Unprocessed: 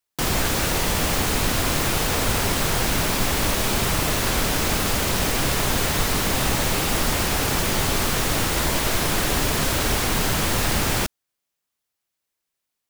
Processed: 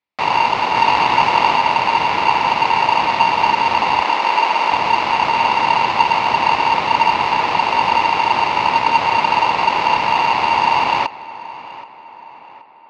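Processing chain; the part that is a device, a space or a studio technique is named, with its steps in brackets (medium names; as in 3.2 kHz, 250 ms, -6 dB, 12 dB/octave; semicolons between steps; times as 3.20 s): 0.73–1.57 s: doubling 21 ms -2 dB; bass shelf 140 Hz +9.5 dB; ring modulator pedal into a guitar cabinet (polarity switched at an audio rate 920 Hz; cabinet simulation 89–3900 Hz, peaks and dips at 1.6 kHz -5 dB, 2.2 kHz +6 dB, 3.2 kHz -5 dB); 4.02–4.72 s: high-pass 280 Hz 12 dB/octave; tape echo 775 ms, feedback 52%, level -16 dB, low-pass 2.9 kHz; trim +1.5 dB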